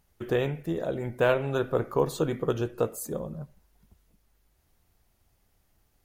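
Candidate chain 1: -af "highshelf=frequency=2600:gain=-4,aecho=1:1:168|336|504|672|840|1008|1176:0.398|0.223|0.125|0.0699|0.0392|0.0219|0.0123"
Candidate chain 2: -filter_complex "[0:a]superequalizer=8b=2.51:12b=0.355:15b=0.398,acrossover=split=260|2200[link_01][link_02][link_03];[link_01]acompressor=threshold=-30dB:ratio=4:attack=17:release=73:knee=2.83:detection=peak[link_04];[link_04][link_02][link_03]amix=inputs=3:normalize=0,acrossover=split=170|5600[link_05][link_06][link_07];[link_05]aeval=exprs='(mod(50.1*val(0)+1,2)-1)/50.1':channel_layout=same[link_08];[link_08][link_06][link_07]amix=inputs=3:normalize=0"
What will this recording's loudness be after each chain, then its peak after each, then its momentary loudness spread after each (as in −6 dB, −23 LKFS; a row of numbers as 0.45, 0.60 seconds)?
−28.5, −26.5 LKFS; −11.5, −8.5 dBFS; 11, 11 LU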